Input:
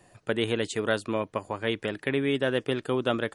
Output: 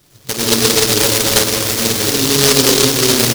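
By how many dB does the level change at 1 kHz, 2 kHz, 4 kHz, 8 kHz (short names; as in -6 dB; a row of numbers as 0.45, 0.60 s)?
+12.5, +12.0, +22.5, +34.0 dB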